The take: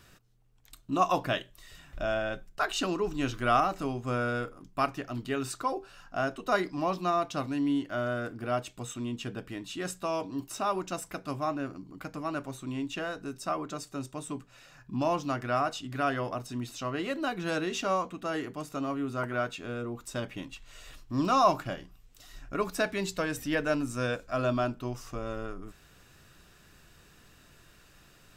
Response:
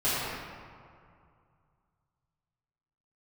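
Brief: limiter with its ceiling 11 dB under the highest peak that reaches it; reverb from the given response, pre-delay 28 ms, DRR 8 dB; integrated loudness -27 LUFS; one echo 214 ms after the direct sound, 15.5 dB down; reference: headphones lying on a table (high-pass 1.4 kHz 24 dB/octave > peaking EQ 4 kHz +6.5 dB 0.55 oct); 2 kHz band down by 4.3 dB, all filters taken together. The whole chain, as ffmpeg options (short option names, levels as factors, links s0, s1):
-filter_complex "[0:a]equalizer=f=2000:t=o:g=-5,alimiter=limit=0.0708:level=0:latency=1,aecho=1:1:214:0.168,asplit=2[s0][s1];[1:a]atrim=start_sample=2205,adelay=28[s2];[s1][s2]afir=irnorm=-1:irlink=0,volume=0.0891[s3];[s0][s3]amix=inputs=2:normalize=0,highpass=f=1400:w=0.5412,highpass=f=1400:w=1.3066,equalizer=f=4000:t=o:w=0.55:g=6.5,volume=5.31"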